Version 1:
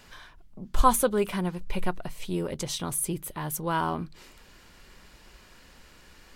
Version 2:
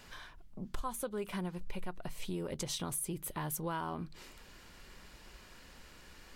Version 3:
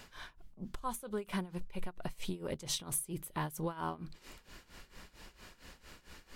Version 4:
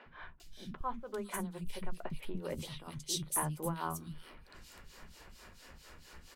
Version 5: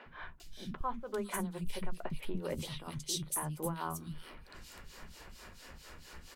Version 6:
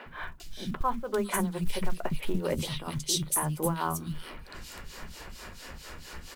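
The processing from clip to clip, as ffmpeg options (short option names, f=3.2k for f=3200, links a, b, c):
-af "acompressor=threshold=-32dB:ratio=8,volume=-2dB"
-af "tremolo=f=4.4:d=0.86,volume=3.5dB"
-filter_complex "[0:a]asplit=2[a][b];[b]adelay=13,volume=-13dB[c];[a][c]amix=inputs=2:normalize=0,acrossover=split=260|2700[d][e][f];[d]adelay=60[g];[f]adelay=400[h];[g][e][h]amix=inputs=3:normalize=0,volume=1dB"
-af "alimiter=level_in=3dB:limit=-24dB:level=0:latency=1:release=293,volume=-3dB,volume=3dB"
-af "acrusher=bits=8:mode=log:mix=0:aa=0.000001,volume=8dB"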